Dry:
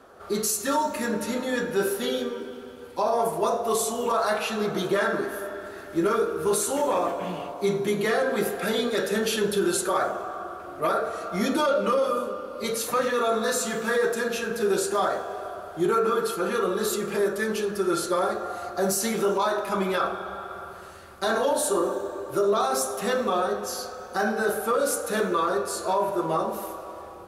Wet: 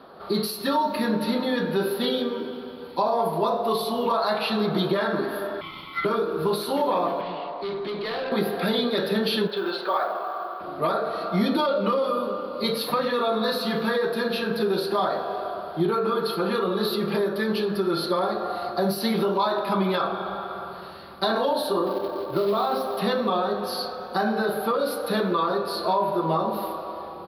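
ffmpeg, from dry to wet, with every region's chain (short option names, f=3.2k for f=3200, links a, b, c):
-filter_complex "[0:a]asettb=1/sr,asplit=3[a][b][c];[a]atrim=end=5.614[d];[b]atrim=start=5.61:end=6.05,asetpts=PTS-STARTPTS,afade=t=in:d=0.004:c=qsin,afade=t=out:st=0.436:d=0.004:c=qsin,highpass=240,aeval=exprs='val(0)*sin(2*PI*1700*n/s)':c=same[e];[c]atrim=start=6.046[f];[d][e]acrossfade=d=0.004:c1=hsin:c2=qsin[g];[g][f]acrossfade=d=0.004:c1=qsin:c2=hsin,asettb=1/sr,asplit=3[h][i][j];[h]atrim=end=7.214[k];[i]atrim=start=7.21:end=8.32,asetpts=PTS-STARTPTS,afade=t=in:d=0.004:c=qsin,afade=t=out:st=1.106:d=0.004:c=qsin,highpass=370,lowpass=4.3k,aeval=exprs='(tanh(35.5*val(0)+0.05)-tanh(0.05))/35.5':c=same[l];[j]atrim=start=8.316[m];[k][l]acrossfade=d=0.004:c1=hsin:c2=qsin[n];[n][m]acrossfade=d=0.004:c1=qsin:c2=hsin,asettb=1/sr,asplit=3[o][p][q];[o]atrim=end=9.474[r];[p]atrim=start=9.47:end=10.61,asetpts=PTS-STARTPTS,afade=t=in:d=0.004:c=qsin,afade=t=out:st=1.136:d=0.004:c=qsin,highpass=520,lowpass=3.1k,acrusher=bits=6:mode=log:mix=0:aa=0.000001[s];[q]atrim=start=10.606[t];[r][s]acrossfade=d=0.004:c1=hsin:c2=qsin[u];[u][t]acrossfade=d=0.004:c1=qsin:c2=hsin,asettb=1/sr,asplit=3[v][w][x];[v]atrim=end=21.864[y];[w]atrim=start=21.86:end=22.97,asetpts=PTS-STARTPTS,afade=t=in:d=0.004:c=qsin,afade=t=out:st=1.106:d=0.004:c=qsin,equalizer=f=8.4k:w=0.68:g=-13.5,acrusher=bits=4:mode=log:mix=0:aa=0.000001[z];[x]atrim=start=22.966[aa];[y][z]acrossfade=d=0.004:c1=hsin:c2=qsin[ab];[ab][aa]acrossfade=d=0.004:c1=qsin:c2=hsin,acompressor=threshold=-26dB:ratio=2.5,firequalizer=gain_entry='entry(100,0);entry(160,13);entry(240,9);entry(430,6);entry(1000,10);entry(1400,4);entry(2600,5);entry(4300,14);entry(7000,-29);entry(11000,2)':delay=0.05:min_phase=1,volume=-3dB"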